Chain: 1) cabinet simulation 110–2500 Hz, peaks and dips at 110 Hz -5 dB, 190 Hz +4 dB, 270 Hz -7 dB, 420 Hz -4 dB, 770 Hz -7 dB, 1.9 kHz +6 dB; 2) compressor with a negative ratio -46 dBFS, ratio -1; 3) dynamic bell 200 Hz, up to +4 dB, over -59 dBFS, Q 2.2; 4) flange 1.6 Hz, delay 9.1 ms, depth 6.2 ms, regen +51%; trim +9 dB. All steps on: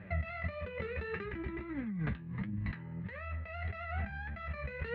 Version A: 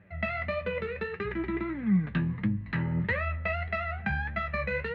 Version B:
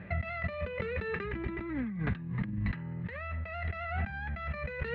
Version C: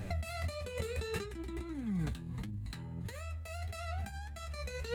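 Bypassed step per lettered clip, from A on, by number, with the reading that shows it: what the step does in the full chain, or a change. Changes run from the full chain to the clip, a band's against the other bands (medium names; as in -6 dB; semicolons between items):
2, momentary loudness spread change +2 LU; 4, loudness change +3.5 LU; 1, 4 kHz band +10.5 dB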